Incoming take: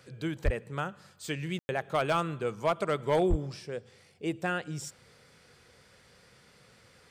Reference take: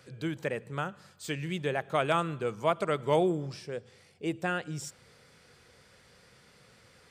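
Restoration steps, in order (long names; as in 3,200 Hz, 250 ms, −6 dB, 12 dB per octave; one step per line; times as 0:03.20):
clipped peaks rebuilt −18.5 dBFS
0:00.44–0:00.56: high-pass filter 140 Hz 24 dB per octave
0:03.29–0:03.41: high-pass filter 140 Hz 24 dB per octave
ambience match 0:01.59–0:01.69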